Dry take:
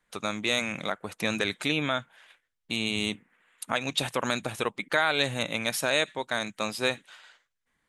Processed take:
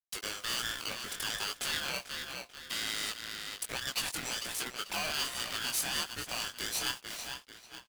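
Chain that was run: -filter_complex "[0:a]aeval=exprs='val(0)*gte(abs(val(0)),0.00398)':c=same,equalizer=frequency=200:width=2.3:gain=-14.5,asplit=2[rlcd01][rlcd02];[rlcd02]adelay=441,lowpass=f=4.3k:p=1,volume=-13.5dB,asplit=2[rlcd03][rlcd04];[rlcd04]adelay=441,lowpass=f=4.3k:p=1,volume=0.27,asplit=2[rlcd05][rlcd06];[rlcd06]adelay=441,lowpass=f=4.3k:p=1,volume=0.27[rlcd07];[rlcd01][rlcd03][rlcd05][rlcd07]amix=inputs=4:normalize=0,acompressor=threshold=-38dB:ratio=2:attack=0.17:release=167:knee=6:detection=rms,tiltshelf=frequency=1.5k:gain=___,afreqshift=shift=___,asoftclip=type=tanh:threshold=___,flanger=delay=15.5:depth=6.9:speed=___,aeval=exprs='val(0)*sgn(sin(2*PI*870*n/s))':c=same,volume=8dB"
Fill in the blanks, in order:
-9.5, 45, -31dB, 1.3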